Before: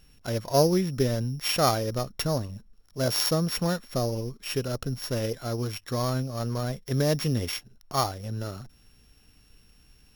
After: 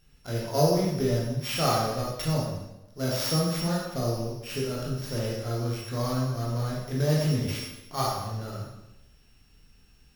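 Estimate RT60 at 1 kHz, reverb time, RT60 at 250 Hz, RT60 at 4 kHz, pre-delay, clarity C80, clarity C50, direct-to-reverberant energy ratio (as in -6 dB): 0.90 s, 0.95 s, 0.95 s, 0.85 s, 8 ms, 3.5 dB, 0.5 dB, -5.0 dB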